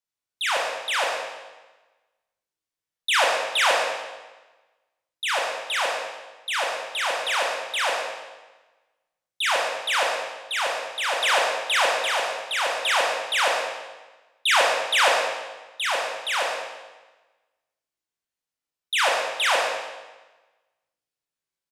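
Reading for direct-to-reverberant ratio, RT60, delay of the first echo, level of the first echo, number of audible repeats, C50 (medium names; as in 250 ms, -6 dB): -2.0 dB, 1.2 s, 129 ms, -9.0 dB, 1, 1.0 dB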